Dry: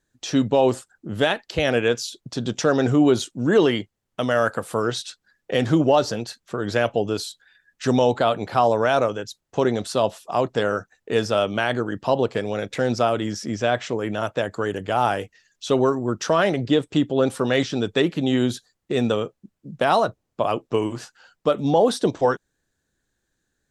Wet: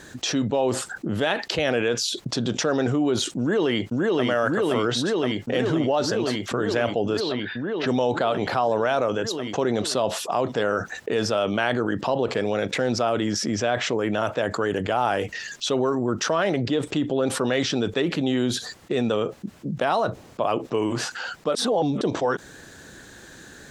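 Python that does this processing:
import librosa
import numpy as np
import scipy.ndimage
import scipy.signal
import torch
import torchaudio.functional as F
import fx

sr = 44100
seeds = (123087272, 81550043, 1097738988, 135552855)

y = fx.echo_throw(x, sr, start_s=3.39, length_s=0.88, ms=520, feedback_pct=75, wet_db=-1.5)
y = fx.lowpass(y, sr, hz=4200.0, slope=24, at=(7.19, 7.86), fade=0.02)
y = fx.edit(y, sr, fx.reverse_span(start_s=21.55, length_s=0.46), tone=tone)
y = fx.highpass(y, sr, hz=150.0, slope=6)
y = fx.high_shelf(y, sr, hz=8500.0, db=-9.5)
y = fx.env_flatten(y, sr, amount_pct=70)
y = y * 10.0 ** (-7.0 / 20.0)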